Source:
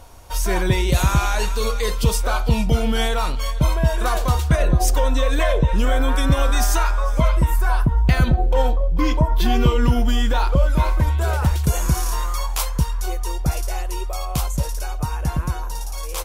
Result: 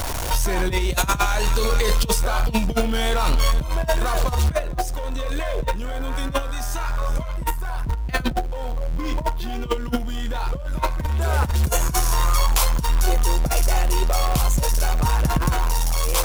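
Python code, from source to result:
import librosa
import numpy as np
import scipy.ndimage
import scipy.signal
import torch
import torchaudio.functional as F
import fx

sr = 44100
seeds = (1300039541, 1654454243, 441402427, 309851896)

y = x + 0.5 * 10.0 ** (-24.5 / 20.0) * np.sign(x)
y = fx.over_compress(y, sr, threshold_db=-19.0, ratio=-0.5)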